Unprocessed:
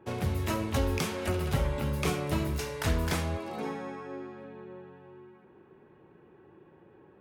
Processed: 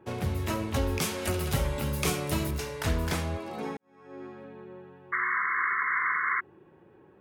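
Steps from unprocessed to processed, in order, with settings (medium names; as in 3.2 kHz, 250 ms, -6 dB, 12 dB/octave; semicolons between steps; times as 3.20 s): 1.01–2.51 s: treble shelf 4 kHz +9.5 dB; 3.77–4.25 s: fade in quadratic; 5.12–6.41 s: painted sound noise 1–2.2 kHz -28 dBFS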